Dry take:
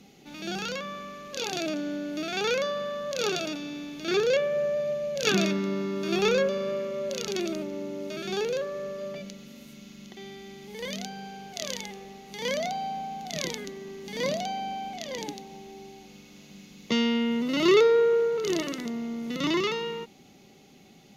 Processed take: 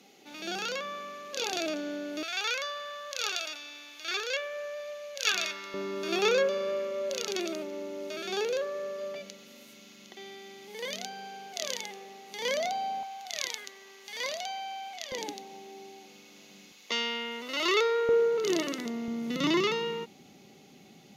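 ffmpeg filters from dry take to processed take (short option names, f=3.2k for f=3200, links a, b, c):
-af "asetnsamples=n=441:p=0,asendcmd='2.23 highpass f 1100;5.74 highpass f 380;13.03 highpass f 930;15.12 highpass f 330;16.72 highpass f 690;18.09 highpass f 220;19.08 highpass f 100',highpass=350"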